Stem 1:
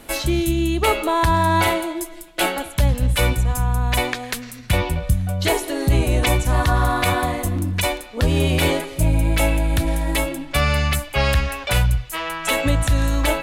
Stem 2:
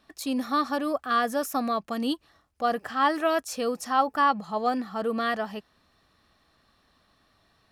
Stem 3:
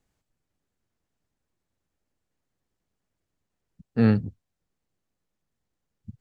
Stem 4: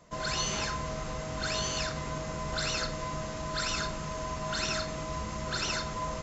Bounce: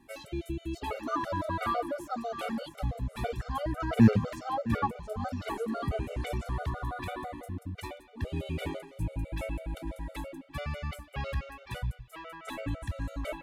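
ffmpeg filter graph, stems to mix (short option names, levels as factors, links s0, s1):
-filter_complex "[0:a]volume=0.224[s0];[1:a]asplit=2[s1][s2];[s2]afreqshift=-2.2[s3];[s1][s3]amix=inputs=2:normalize=1,adelay=550,volume=0.75,asplit=2[s4][s5];[s5]volume=0.299[s6];[2:a]volume=1.26,asplit=3[s7][s8][s9];[s8]volume=0.224[s10];[3:a]volume=0.447,asplit=2[s11][s12];[s12]volume=0.422[s13];[s9]apad=whole_len=274567[s14];[s11][s14]sidechaingate=range=0.0224:threshold=0.00355:ratio=16:detection=peak[s15];[s6][s10][s13]amix=inputs=3:normalize=0,aecho=0:1:678:1[s16];[s0][s4][s7][s15][s16]amix=inputs=5:normalize=0,highpass=44,highshelf=f=3400:g=-11.5,afftfilt=real='re*gt(sin(2*PI*6*pts/sr)*(1-2*mod(floor(b*sr/1024/390),2)),0)':imag='im*gt(sin(2*PI*6*pts/sr)*(1-2*mod(floor(b*sr/1024/390),2)),0)':win_size=1024:overlap=0.75"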